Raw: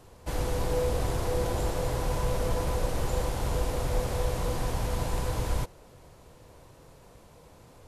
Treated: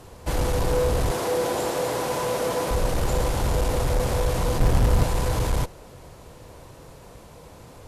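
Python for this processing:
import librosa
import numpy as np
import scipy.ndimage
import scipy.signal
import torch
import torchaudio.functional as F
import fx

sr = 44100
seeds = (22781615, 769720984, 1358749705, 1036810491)

y = fx.highpass(x, sr, hz=240.0, slope=12, at=(1.11, 2.71))
y = fx.low_shelf(y, sr, hz=480.0, db=9.0, at=(4.58, 5.02), fade=0.02)
y = fx.cheby_harmonics(y, sr, harmonics=(5,), levels_db=(-16,), full_scale_db=-15.0)
y = y * librosa.db_to_amplitude(3.0)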